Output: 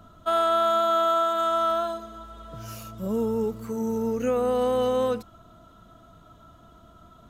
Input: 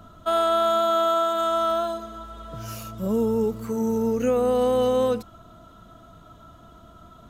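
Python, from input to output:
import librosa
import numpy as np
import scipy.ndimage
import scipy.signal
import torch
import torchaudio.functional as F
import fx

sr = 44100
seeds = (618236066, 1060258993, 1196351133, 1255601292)

y = fx.dynamic_eq(x, sr, hz=1500.0, q=0.78, threshold_db=-32.0, ratio=4.0, max_db=4)
y = F.gain(torch.from_numpy(y), -3.5).numpy()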